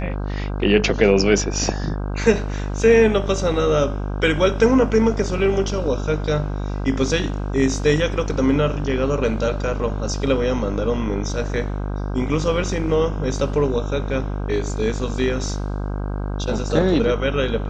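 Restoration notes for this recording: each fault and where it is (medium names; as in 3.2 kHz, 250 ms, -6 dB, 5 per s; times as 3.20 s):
buzz 50 Hz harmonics 32 -25 dBFS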